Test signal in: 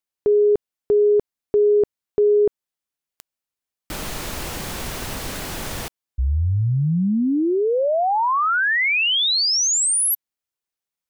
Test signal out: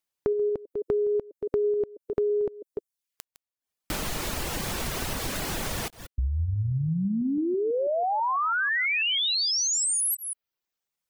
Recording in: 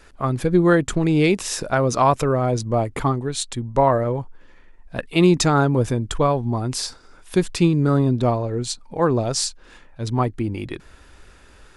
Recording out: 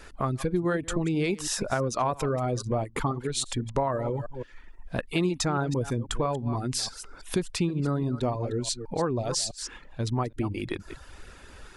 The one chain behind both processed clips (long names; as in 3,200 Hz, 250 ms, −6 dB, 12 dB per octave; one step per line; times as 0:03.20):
delay that plays each chunk backwards 164 ms, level −12.5 dB
reverb reduction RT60 0.53 s
downward compressor 3 to 1, threshold −30 dBFS
level +2.5 dB